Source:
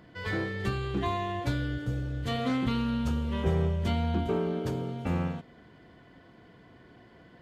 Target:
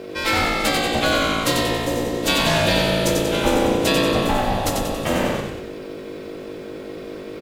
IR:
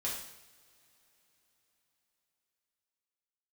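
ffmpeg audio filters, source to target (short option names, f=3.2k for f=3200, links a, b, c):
-filter_complex "[0:a]crystalizer=i=8:c=0,aeval=exprs='val(0)+0.01*(sin(2*PI*50*n/s)+sin(2*PI*2*50*n/s)/2+sin(2*PI*3*50*n/s)/3+sin(2*PI*4*50*n/s)/4+sin(2*PI*5*50*n/s)/5)':c=same,aeval=exprs='val(0)*sin(2*PI*420*n/s)':c=same,asplit=8[a][b][c][d][e][f][g][h];[b]adelay=93,afreqshift=-55,volume=-4dB[i];[c]adelay=186,afreqshift=-110,volume=-9.7dB[j];[d]adelay=279,afreqshift=-165,volume=-15.4dB[k];[e]adelay=372,afreqshift=-220,volume=-21dB[l];[f]adelay=465,afreqshift=-275,volume=-26.7dB[m];[g]adelay=558,afreqshift=-330,volume=-32.4dB[n];[h]adelay=651,afreqshift=-385,volume=-38.1dB[o];[a][i][j][k][l][m][n][o]amix=inputs=8:normalize=0,volume=9dB"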